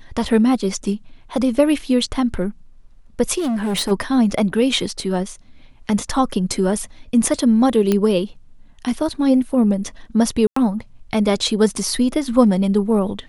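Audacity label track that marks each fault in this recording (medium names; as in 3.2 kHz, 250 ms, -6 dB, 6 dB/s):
3.380000	3.920000	clipped -18 dBFS
7.920000	7.920000	pop -5 dBFS
10.470000	10.560000	dropout 94 ms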